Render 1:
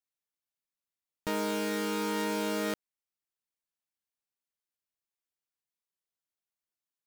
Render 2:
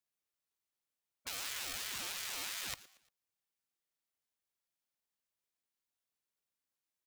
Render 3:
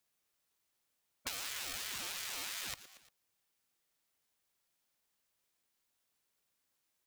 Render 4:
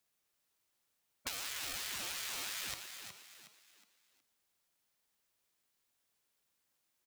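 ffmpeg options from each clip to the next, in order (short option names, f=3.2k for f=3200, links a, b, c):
-af "afftfilt=real='re*lt(hypot(re,im),0.0282)':imag='im*lt(hypot(re,im),0.0282)':win_size=1024:overlap=0.75,aecho=1:1:116|232|348:0.133|0.052|0.0203,aeval=exprs='val(0)*sin(2*PI*560*n/s+560*0.75/2.9*sin(2*PI*2.9*n/s))':c=same,volume=3.5dB"
-af "acompressor=threshold=-47dB:ratio=4,volume=9dB"
-filter_complex "[0:a]asplit=5[a][b][c][d][e];[b]adelay=366,afreqshift=50,volume=-8dB[f];[c]adelay=732,afreqshift=100,volume=-16.6dB[g];[d]adelay=1098,afreqshift=150,volume=-25.3dB[h];[e]adelay=1464,afreqshift=200,volume=-33.9dB[i];[a][f][g][h][i]amix=inputs=5:normalize=0"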